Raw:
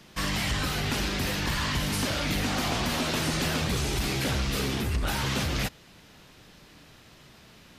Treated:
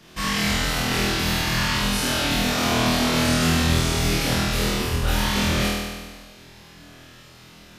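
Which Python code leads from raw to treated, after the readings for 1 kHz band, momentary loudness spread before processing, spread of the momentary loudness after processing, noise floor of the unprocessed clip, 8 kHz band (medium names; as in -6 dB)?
+6.5 dB, 2 LU, 4 LU, -54 dBFS, +6.5 dB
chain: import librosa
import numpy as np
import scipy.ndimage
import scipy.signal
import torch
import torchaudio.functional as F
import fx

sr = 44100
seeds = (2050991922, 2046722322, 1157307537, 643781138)

y = fx.room_flutter(x, sr, wall_m=4.2, rt60_s=1.4)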